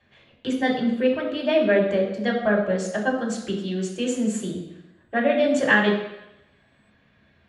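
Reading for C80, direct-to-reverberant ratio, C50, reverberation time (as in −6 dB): 8.0 dB, −4.5 dB, 5.5 dB, 0.90 s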